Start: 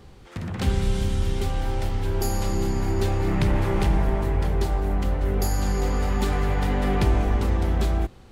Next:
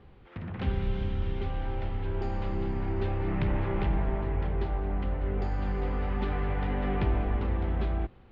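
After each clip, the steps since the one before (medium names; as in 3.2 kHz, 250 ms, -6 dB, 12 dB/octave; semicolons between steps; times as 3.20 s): low-pass 3.1 kHz 24 dB/octave; trim -6.5 dB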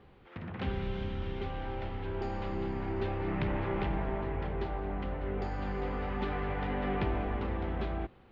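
bass shelf 130 Hz -9 dB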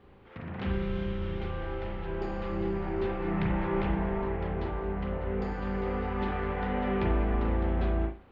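reverberation, pre-delay 36 ms, DRR 0 dB; trim -1 dB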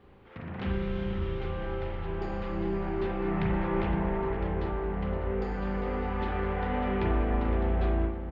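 echo from a far wall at 88 m, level -8 dB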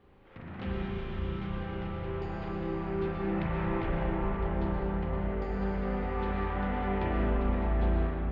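algorithmic reverb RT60 2.7 s, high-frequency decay 0.55×, pre-delay 80 ms, DRR -0.5 dB; trim -4.5 dB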